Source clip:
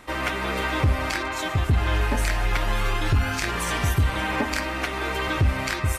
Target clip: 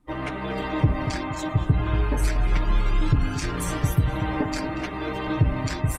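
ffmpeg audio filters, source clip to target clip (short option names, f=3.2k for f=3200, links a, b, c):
-filter_complex "[0:a]afftdn=nr=23:nf=-39,equalizer=f=1.9k:w=0.32:g=-10.5,aecho=1:1:6.6:0.66,asplit=2[a][b];[b]adelay=235,lowpass=f=2.1k:p=1,volume=-10dB,asplit=2[c][d];[d]adelay=235,lowpass=f=2.1k:p=1,volume=0.53,asplit=2[e][f];[f]adelay=235,lowpass=f=2.1k:p=1,volume=0.53,asplit=2[g][h];[h]adelay=235,lowpass=f=2.1k:p=1,volume=0.53,asplit=2[i][j];[j]adelay=235,lowpass=f=2.1k:p=1,volume=0.53,asplit=2[k][l];[l]adelay=235,lowpass=f=2.1k:p=1,volume=0.53[m];[c][e][g][i][k][m]amix=inputs=6:normalize=0[n];[a][n]amix=inputs=2:normalize=0,volume=2dB" -ar 48000 -c:a libopus -b:a 24k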